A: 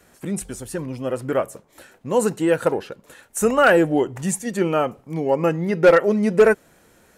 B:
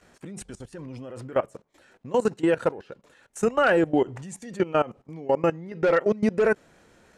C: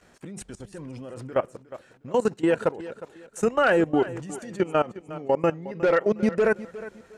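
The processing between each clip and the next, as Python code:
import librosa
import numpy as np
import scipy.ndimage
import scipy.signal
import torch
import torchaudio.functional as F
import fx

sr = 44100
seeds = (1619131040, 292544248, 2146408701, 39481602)

y1 = scipy.signal.sosfilt(scipy.signal.butter(2, 6500.0, 'lowpass', fs=sr, output='sos'), x)
y1 = fx.level_steps(y1, sr, step_db=19)
y2 = fx.echo_feedback(y1, sr, ms=360, feedback_pct=30, wet_db=-16)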